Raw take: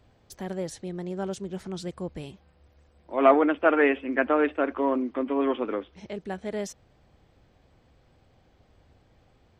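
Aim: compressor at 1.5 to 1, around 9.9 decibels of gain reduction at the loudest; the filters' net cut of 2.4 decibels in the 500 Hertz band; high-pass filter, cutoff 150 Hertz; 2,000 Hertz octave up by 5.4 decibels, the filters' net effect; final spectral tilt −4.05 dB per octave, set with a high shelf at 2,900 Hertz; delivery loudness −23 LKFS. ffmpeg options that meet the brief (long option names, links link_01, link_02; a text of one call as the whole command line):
ffmpeg -i in.wav -af "highpass=150,equalizer=frequency=500:width_type=o:gain=-3.5,equalizer=frequency=2000:width_type=o:gain=8.5,highshelf=frequency=2900:gain=-4,acompressor=threshold=-42dB:ratio=1.5,volume=12dB" out.wav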